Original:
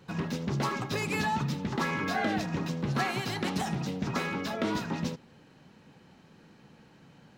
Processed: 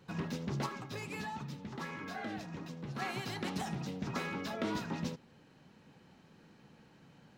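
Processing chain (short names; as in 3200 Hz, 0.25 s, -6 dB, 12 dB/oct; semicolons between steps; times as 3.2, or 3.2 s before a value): vocal rider 2 s; 0.66–3.02 flange 1.5 Hz, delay 2.6 ms, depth 7.2 ms, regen +77%; gain -7 dB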